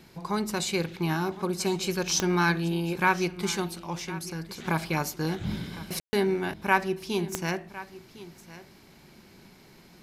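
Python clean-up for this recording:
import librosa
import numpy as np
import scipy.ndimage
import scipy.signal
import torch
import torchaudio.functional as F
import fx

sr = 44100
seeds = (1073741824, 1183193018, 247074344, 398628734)

y = fx.fix_declick_ar(x, sr, threshold=10.0)
y = fx.fix_ambience(y, sr, seeds[0], print_start_s=8.65, print_end_s=9.15, start_s=6.0, end_s=6.13)
y = fx.fix_echo_inverse(y, sr, delay_ms=1057, level_db=-17.0)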